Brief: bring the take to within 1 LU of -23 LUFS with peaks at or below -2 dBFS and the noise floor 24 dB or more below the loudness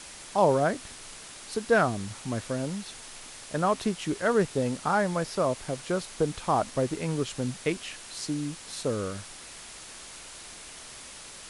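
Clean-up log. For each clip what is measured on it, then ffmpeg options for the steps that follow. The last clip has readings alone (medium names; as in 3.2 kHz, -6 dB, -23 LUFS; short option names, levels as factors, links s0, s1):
noise floor -45 dBFS; noise floor target -53 dBFS; loudness -29.0 LUFS; peak level -10.0 dBFS; loudness target -23.0 LUFS
-> -af "afftdn=nr=8:nf=-45"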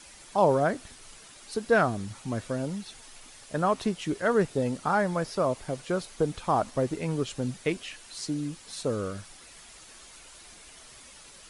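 noise floor -50 dBFS; noise floor target -53 dBFS
-> -af "afftdn=nr=6:nf=-50"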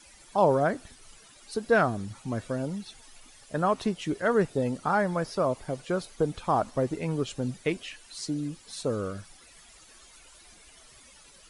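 noise floor -54 dBFS; loudness -29.0 LUFS; peak level -10.5 dBFS; loudness target -23.0 LUFS
-> -af "volume=2"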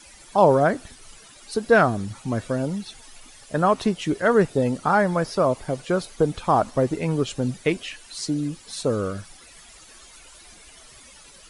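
loudness -23.0 LUFS; peak level -4.5 dBFS; noise floor -48 dBFS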